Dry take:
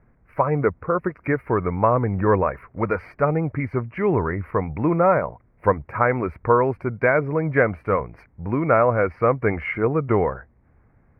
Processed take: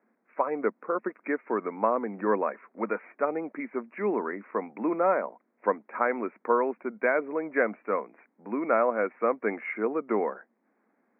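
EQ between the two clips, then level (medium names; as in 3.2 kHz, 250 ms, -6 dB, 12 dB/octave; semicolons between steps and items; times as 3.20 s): Chebyshev band-pass 210–2600 Hz, order 5; -6.0 dB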